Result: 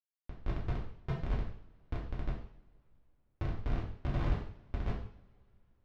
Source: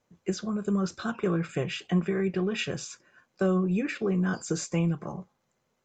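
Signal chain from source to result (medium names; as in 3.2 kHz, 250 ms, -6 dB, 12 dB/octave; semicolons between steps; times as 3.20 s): spectral gate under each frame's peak -20 dB weak; low-pass that closes with the level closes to 670 Hz, closed at -41.5 dBFS; elliptic band-stop 330–7300 Hz; resonant low shelf 210 Hz +8.5 dB, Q 1.5; Schmitt trigger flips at -41 dBFS; distance through air 230 m; two-slope reverb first 0.58 s, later 3.4 s, from -28 dB, DRR -5 dB; trim +16 dB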